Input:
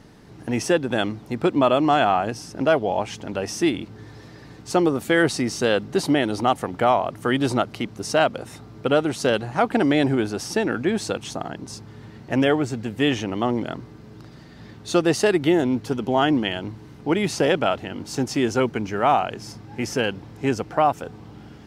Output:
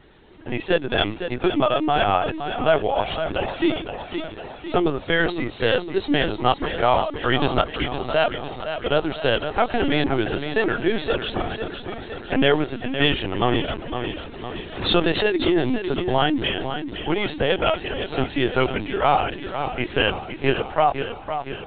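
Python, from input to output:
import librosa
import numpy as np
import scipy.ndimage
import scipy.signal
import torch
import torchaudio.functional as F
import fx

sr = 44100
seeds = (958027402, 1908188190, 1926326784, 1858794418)

y = scipy.signal.sosfilt(scipy.signal.butter(2, 210.0, 'highpass', fs=sr, output='sos'), x)
y = fx.high_shelf(y, sr, hz=3100.0, db=10.5)
y = fx.rider(y, sr, range_db=3, speed_s=0.5)
y = fx.echo_feedback(y, sr, ms=510, feedback_pct=60, wet_db=-9)
y = fx.lpc_vocoder(y, sr, seeds[0], excitation='pitch_kept', order=16)
y = fx.pre_swell(y, sr, db_per_s=86.0, at=(13.8, 15.95))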